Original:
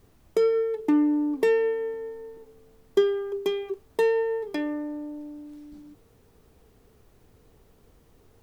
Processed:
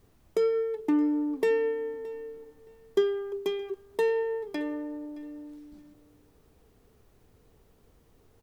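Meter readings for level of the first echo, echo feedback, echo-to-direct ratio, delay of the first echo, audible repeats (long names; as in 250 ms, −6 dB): −20.5 dB, 21%, −20.5 dB, 620 ms, 2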